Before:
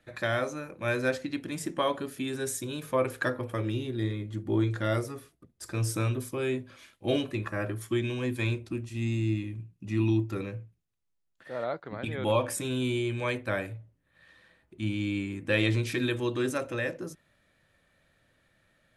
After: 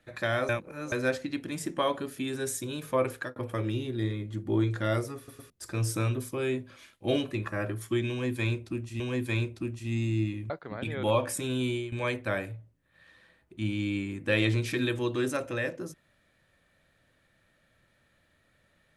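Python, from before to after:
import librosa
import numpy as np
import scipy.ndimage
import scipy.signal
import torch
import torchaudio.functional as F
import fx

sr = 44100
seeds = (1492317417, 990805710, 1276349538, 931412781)

y = fx.edit(x, sr, fx.reverse_span(start_s=0.49, length_s=0.43),
    fx.fade_out_span(start_s=3.11, length_s=0.25),
    fx.stutter_over(start_s=5.17, slice_s=0.11, count=3),
    fx.repeat(start_s=8.1, length_s=0.9, count=2),
    fx.cut(start_s=9.6, length_s=2.11),
    fx.fade_out_to(start_s=12.81, length_s=0.32, curve='qsin', floor_db=-13.0), tone=tone)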